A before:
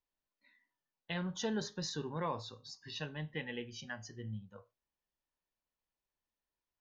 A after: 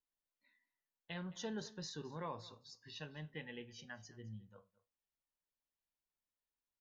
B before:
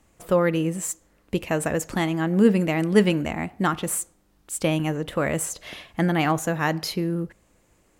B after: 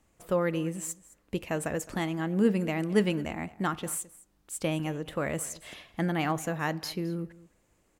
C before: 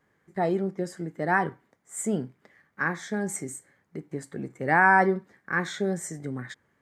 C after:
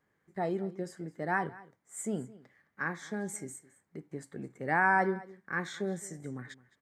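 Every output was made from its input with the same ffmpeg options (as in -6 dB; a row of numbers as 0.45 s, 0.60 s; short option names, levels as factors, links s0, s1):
-af "aecho=1:1:214:0.1,volume=0.447"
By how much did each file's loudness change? -7.0 LU, -7.0 LU, -7.0 LU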